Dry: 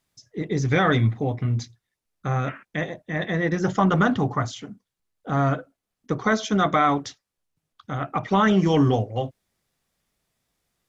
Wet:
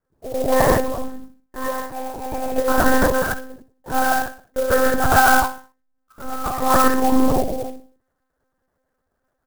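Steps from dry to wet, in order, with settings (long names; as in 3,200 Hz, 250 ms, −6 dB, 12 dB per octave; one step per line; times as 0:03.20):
gliding playback speed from 151% → 79%
Chebyshev low-pass filter 1,700 Hz, order 4
parametric band 510 Hz +5.5 dB 0.27 octaves
mains-hum notches 50/100/150/200/250/300/350/400/450 Hz
comb filter 7.4 ms, depth 53%
pitch vibrato 6.8 Hz 16 cents
in parallel at +1.5 dB: output level in coarse steps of 21 dB
on the sum: pitch vibrato 1.4 Hz 18 cents
on a send: repeating echo 63 ms, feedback 39%, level −12 dB
on the sum: reverb whose tail is shaped and stops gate 190 ms flat, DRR −6.5 dB
one-pitch LPC vocoder at 8 kHz 260 Hz
converter with an unsteady clock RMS 0.046 ms
level −7 dB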